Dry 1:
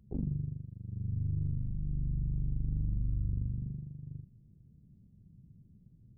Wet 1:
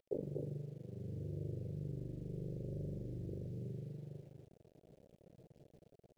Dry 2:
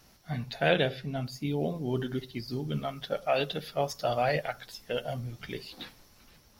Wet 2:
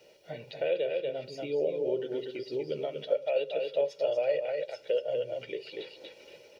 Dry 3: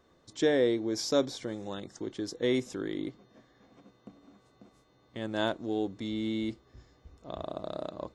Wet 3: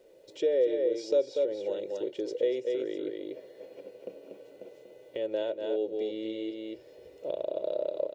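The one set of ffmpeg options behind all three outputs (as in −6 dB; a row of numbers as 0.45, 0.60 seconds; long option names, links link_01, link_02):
-filter_complex "[0:a]equalizer=frequency=2600:width_type=o:width=0.7:gain=12,aecho=1:1:2.1:0.68,asplit=2[link_01][link_02];[link_02]aecho=0:1:239:0.473[link_03];[link_01][link_03]amix=inputs=2:normalize=0,dynaudnorm=framelen=130:gausssize=7:maxgain=5dB,highpass=370,lowpass=6300,acrusher=bits=10:mix=0:aa=0.000001,acompressor=threshold=-41dB:ratio=2.5,lowshelf=frequency=790:width_type=q:width=3:gain=10.5,volume=-6dB"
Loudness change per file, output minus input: −8.5, 0.0, +0.5 LU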